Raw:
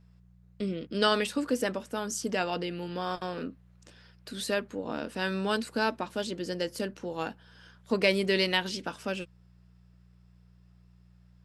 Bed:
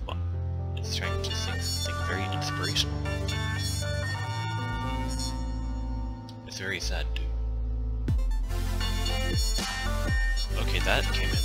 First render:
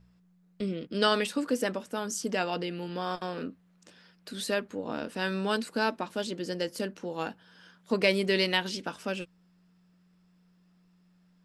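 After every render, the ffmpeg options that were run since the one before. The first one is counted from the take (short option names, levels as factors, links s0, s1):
-af "bandreject=f=60:t=h:w=4,bandreject=f=120:t=h:w=4"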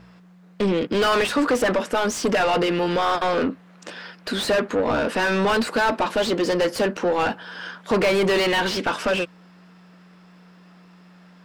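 -filter_complex "[0:a]asplit=2[s0][s1];[s1]highpass=f=720:p=1,volume=39.8,asoftclip=type=tanh:threshold=0.299[s2];[s0][s2]amix=inputs=2:normalize=0,lowpass=f=1600:p=1,volume=0.501"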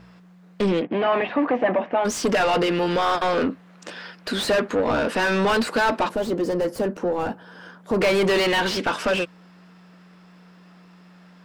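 -filter_complex "[0:a]asplit=3[s0][s1][s2];[s0]afade=t=out:st=0.8:d=0.02[s3];[s1]highpass=170,equalizer=f=450:t=q:w=4:g=-6,equalizer=f=720:t=q:w=4:g=8,equalizer=f=1400:t=q:w=4:g=-10,lowpass=f=2400:w=0.5412,lowpass=f=2400:w=1.3066,afade=t=in:st=0.8:d=0.02,afade=t=out:st=2.04:d=0.02[s4];[s2]afade=t=in:st=2.04:d=0.02[s5];[s3][s4][s5]amix=inputs=3:normalize=0,asettb=1/sr,asplit=3[s6][s7][s8];[s6]atrim=end=6.094[s9];[s7]atrim=start=6.09:end=8.01,asetpts=PTS-STARTPTS,afade=t=in:d=0.004:c=qsin,afade=t=out:st=1.916:d=0.004:c=qsin,equalizer=f=3200:w=0.38:g=-13[s10];[s8]atrim=start=8.006[s11];[s9][s10]acrossfade=d=0.004:c1=hsin:c2=qsin[s12];[s12][s11]acrossfade=d=0.004:c1=qsin:c2=hsin"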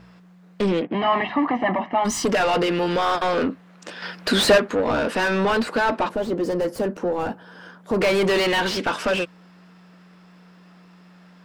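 -filter_complex "[0:a]asettb=1/sr,asplit=3[s0][s1][s2];[s0]atrim=end=0.944[s3];[s1]atrim=start=0.94:end=2.25,asetpts=PTS-STARTPTS,afade=t=in:d=0.004:c=qsin,afade=t=out:st=1.306:d=0.004:c=qsin,aecho=1:1:1:0.72,atrim=end_sample=57771[s4];[s2]atrim=start=2.246[s5];[s3][s4]acrossfade=d=0.004:c1=hsin:c2=qsin[s6];[s6][s5]acrossfade=d=0.004:c1=qsin:c2=hsin,asettb=1/sr,asplit=3[s7][s8][s9];[s7]atrim=end=4.024[s10];[s8]atrim=start=4.02:end=4.58,asetpts=PTS-STARTPTS,afade=t=in:d=0.004:c=qsin,afade=t=out:st=0.556:d=0.004:c=qsin,acontrast=68[s11];[s9]atrim=start=4.576[s12];[s10][s11]acrossfade=d=0.004:c1=hsin:c2=qsin[s13];[s13][s12]acrossfade=d=0.004:c1=qsin:c2=hsin,asettb=1/sr,asplit=3[s14][s15][s16];[s14]atrim=end=5.284[s17];[s15]atrim=start=5.28:end=6.42,asetpts=PTS-STARTPTS,afade=t=in:d=0.004:c=qsin,afade=t=out:st=1.136:d=0.004:c=qsin,highshelf=f=4400:g=-7[s18];[s16]atrim=start=6.416[s19];[s17][s18]acrossfade=d=0.004:c1=hsin:c2=qsin[s20];[s20][s19]acrossfade=d=0.004:c1=qsin:c2=hsin"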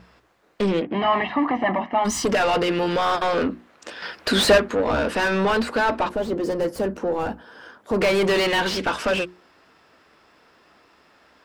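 -af "equalizer=f=66:t=o:w=0.32:g=12,bandreject=f=60:t=h:w=6,bandreject=f=120:t=h:w=6,bandreject=f=180:t=h:w=6,bandreject=f=240:t=h:w=6,bandreject=f=300:t=h:w=6,bandreject=f=360:t=h:w=6"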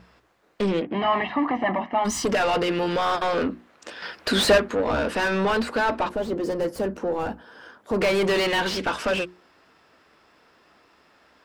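-af "volume=0.794"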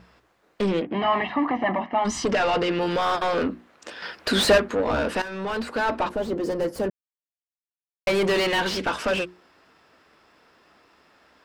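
-filter_complex "[0:a]asettb=1/sr,asplit=3[s0][s1][s2];[s0]atrim=end=1.344[s3];[s1]atrim=start=1.34:end=2.81,asetpts=PTS-STARTPTS,afade=t=in:d=0.004:c=qsin,afade=t=out:st=1.466:d=0.004:c=qsin,lowpass=6500[s4];[s2]atrim=start=2.806[s5];[s3][s4]acrossfade=d=0.004:c1=hsin:c2=qsin[s6];[s6][s5]acrossfade=d=0.004:c1=qsin:c2=hsin,asplit=4[s7][s8][s9][s10];[s7]atrim=end=5.22,asetpts=PTS-STARTPTS,afade=t=out:st=5.216:d=0.004:c=hsin:silence=0.211349[s11];[s8]atrim=start=5.22:end=6.9,asetpts=PTS-STARTPTS,afade=t=in:d=0.77:silence=0.211349,afade=t=out:st=1.676:d=0.004:c=hsin[s12];[s9]atrim=start=6.9:end=8.07,asetpts=PTS-STARTPTS,volume=0[s13];[s10]atrim=start=8.07,asetpts=PTS-STARTPTS,afade=t=in:d=0.004:c=hsin[s14];[s11][s12][s13][s14]concat=n=4:v=0:a=1"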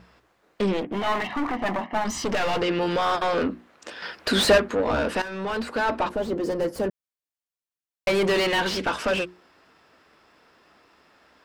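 -filter_complex "[0:a]asettb=1/sr,asplit=3[s0][s1][s2];[s0]atrim=end=0.734[s3];[s1]atrim=start=0.73:end=2.62,asetpts=PTS-STARTPTS,afade=t=in:d=0.004:c=qsin,afade=t=out:st=1.886:d=0.004:c=qsin,aeval=exprs='clip(val(0),-1,0.0355)':c=same[s4];[s2]atrim=start=2.616[s5];[s3][s4]acrossfade=d=0.004:c1=hsin:c2=qsin[s6];[s6][s5]acrossfade=d=0.004:c1=qsin:c2=hsin"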